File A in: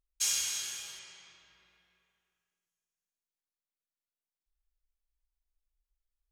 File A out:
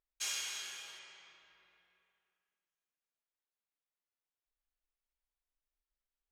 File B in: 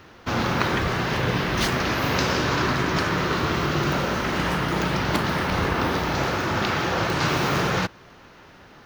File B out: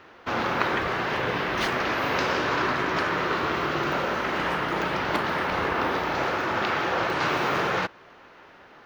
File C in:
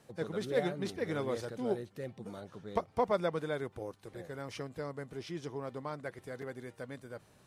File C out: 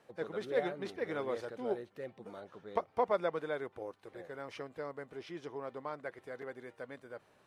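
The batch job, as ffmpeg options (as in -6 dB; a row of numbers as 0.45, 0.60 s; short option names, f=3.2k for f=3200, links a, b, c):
-af "bass=f=250:g=-12,treble=f=4k:g=-11"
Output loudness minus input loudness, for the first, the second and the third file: -7.5, -2.0, -1.5 LU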